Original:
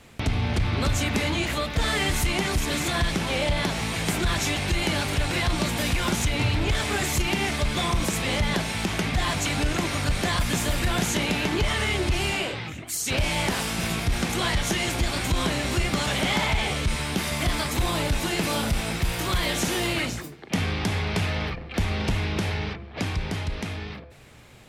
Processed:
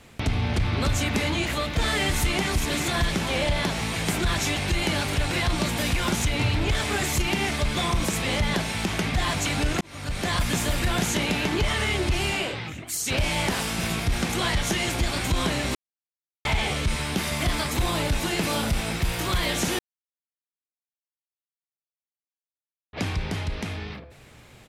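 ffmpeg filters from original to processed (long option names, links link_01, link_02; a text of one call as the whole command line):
ffmpeg -i in.wav -filter_complex "[0:a]asplit=3[link_01][link_02][link_03];[link_01]afade=type=out:start_time=1.58:duration=0.02[link_04];[link_02]aecho=1:1:403:0.237,afade=type=in:start_time=1.58:duration=0.02,afade=type=out:start_time=3.68:duration=0.02[link_05];[link_03]afade=type=in:start_time=3.68:duration=0.02[link_06];[link_04][link_05][link_06]amix=inputs=3:normalize=0,asplit=6[link_07][link_08][link_09][link_10][link_11][link_12];[link_07]atrim=end=9.81,asetpts=PTS-STARTPTS,afade=type=out:start_time=9.806:duration=0.004:curve=hsin[link_13];[link_08]atrim=start=9.81:end=15.75,asetpts=PTS-STARTPTS,afade=type=in:duration=0.55,afade=type=out:start_time=5.936:duration=0.004:curve=hsin[link_14];[link_09]atrim=start=15.75:end=16.45,asetpts=PTS-STARTPTS,volume=0[link_15];[link_10]atrim=start=16.45:end=19.79,asetpts=PTS-STARTPTS,afade=type=in:duration=0.004:curve=hsin,afade=type=out:start_time=3.336:duration=0.004:curve=hsin[link_16];[link_11]atrim=start=19.79:end=22.93,asetpts=PTS-STARTPTS,volume=0[link_17];[link_12]atrim=start=22.93,asetpts=PTS-STARTPTS,afade=type=in:duration=0.004:curve=hsin[link_18];[link_13][link_14][link_15][link_16][link_17][link_18]concat=n=6:v=0:a=1" out.wav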